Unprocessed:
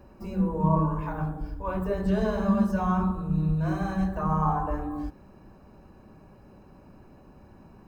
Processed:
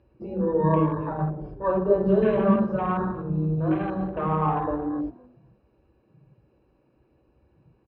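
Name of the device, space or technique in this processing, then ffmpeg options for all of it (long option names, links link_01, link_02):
frequency-shifting delay pedal into a guitar cabinet: -filter_complex "[0:a]lowpass=4400,aemphasis=mode=production:type=75kf,afwtdn=0.0158,asettb=1/sr,asplit=3[link_01][link_02][link_03];[link_01]atrim=end=1.104[link_04];[link_02]atrim=start=1.1:end=2.56,asetpts=PTS-STARTPTS,afade=type=in:duration=0.004:curve=qsin,afade=type=out:start_time=1.456:duration=0.004:curve=qsin,aecho=1:1:5.2:0.77,atrim=end_sample=64386[link_05];[link_03]atrim=start=2.556[link_06];[link_04][link_05]acrossfade=duration=0.004:curve1=hsin:curve2=qsin[link_07];[link_07][link_06]acrossfade=duration=0.004:curve1=qsin:curve2=hsin,asplit=3[link_08][link_09][link_10];[link_09]adelay=254,afreqshift=-47,volume=-22.5dB[link_11];[link_10]adelay=508,afreqshift=-94,volume=-32.1dB[link_12];[link_08][link_11][link_12]amix=inputs=3:normalize=0,highpass=79,equalizer=frequency=88:width_type=q:width=4:gain=-10,equalizer=frequency=130:width_type=q:width=4:gain=9,equalizer=frequency=180:width_type=q:width=4:gain=-5,equalizer=frequency=330:width_type=q:width=4:gain=9,equalizer=frequency=490:width_type=q:width=4:gain=10,equalizer=frequency=2600:width_type=q:width=4:gain=5,lowpass=frequency=4500:width=0.5412,lowpass=frequency=4500:width=1.3066"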